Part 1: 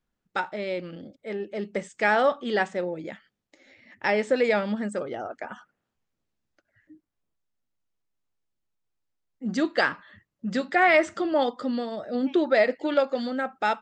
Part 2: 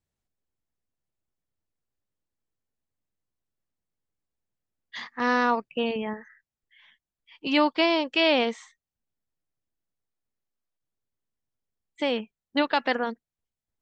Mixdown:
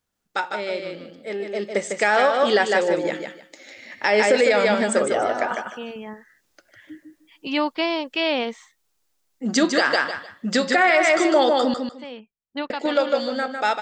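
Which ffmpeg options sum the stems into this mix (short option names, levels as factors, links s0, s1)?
-filter_complex "[0:a]bass=f=250:g=-10,treble=f=4000:g=7,bandreject=f=179.6:t=h:w=4,bandreject=f=359.2:t=h:w=4,bandreject=f=538.8:t=h:w=4,bandreject=f=718.4:t=h:w=4,bandreject=f=898:t=h:w=4,bandreject=f=1077.6:t=h:w=4,bandreject=f=1257.2:t=h:w=4,bandreject=f=1436.8:t=h:w=4,bandreject=f=1616.4:t=h:w=4,bandreject=f=1796:t=h:w=4,bandreject=f=1975.6:t=h:w=4,bandreject=f=2155.2:t=h:w=4,bandreject=f=2334.8:t=h:w=4,bandreject=f=2514.4:t=h:w=4,bandreject=f=2694:t=h:w=4,bandreject=f=2873.6:t=h:w=4,bandreject=f=3053.2:t=h:w=4,bandreject=f=3232.8:t=h:w=4,bandreject=f=3412.4:t=h:w=4,bandreject=f=3592:t=h:w=4,bandreject=f=3771.6:t=h:w=4,bandreject=f=3951.2:t=h:w=4,bandreject=f=4130.8:t=h:w=4,bandreject=f=4310.4:t=h:w=4,bandreject=f=4490:t=h:w=4,bandreject=f=4669.6:t=h:w=4,bandreject=f=4849.2:t=h:w=4,bandreject=f=5028.8:t=h:w=4,bandreject=f=5208.4:t=h:w=4,bandreject=f=5388:t=h:w=4,dynaudnorm=f=380:g=11:m=5.01,volume=1.41,asplit=3[s0][s1][s2];[s0]atrim=end=11.74,asetpts=PTS-STARTPTS,afade=t=out:st=11.736:d=0.004:c=hsin[s3];[s1]atrim=start=11.74:end=12.7,asetpts=PTS-STARTPTS,volume=0[s4];[s2]atrim=start=12.7,asetpts=PTS-STARTPTS,afade=t=in:d=0.004:c=hsin[s5];[s3][s4][s5]concat=n=3:v=0:a=1,asplit=3[s6][s7][s8];[s7]volume=0.531[s9];[1:a]volume=0.891[s10];[s8]apad=whole_len=609433[s11];[s10][s11]sidechaincompress=threshold=0.0447:ratio=6:attack=16:release=1230[s12];[s9]aecho=0:1:152|304|456:1|0.21|0.0441[s13];[s6][s12][s13]amix=inputs=3:normalize=0,alimiter=limit=0.398:level=0:latency=1:release=136"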